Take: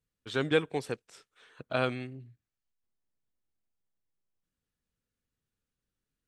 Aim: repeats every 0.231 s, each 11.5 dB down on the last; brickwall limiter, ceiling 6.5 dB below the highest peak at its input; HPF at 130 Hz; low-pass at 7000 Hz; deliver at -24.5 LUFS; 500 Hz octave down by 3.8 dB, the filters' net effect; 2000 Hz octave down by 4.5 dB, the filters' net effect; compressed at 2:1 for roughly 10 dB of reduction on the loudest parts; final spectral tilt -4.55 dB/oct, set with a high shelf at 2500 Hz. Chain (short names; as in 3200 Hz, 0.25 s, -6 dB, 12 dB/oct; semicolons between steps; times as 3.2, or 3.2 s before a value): HPF 130 Hz; LPF 7000 Hz; bell 500 Hz -4 dB; bell 2000 Hz -4 dB; high shelf 2500 Hz -4.5 dB; compressor 2:1, threshold -42 dBFS; limiter -29.5 dBFS; feedback echo 0.231 s, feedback 27%, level -11.5 dB; gain +21 dB